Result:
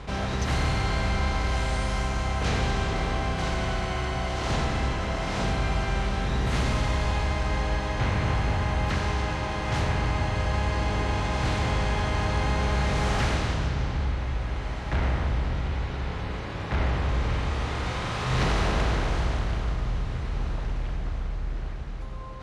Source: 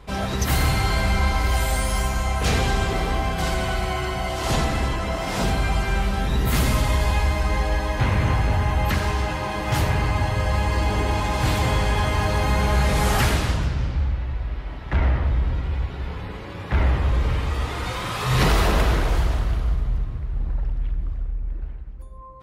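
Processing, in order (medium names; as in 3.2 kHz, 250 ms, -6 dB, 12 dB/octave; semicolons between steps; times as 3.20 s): spectral levelling over time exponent 0.6; Bessel low-pass 5.8 kHz, order 4; on a send: echo that smears into a reverb 1814 ms, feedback 47%, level -15.5 dB; on the sum: trim -8 dB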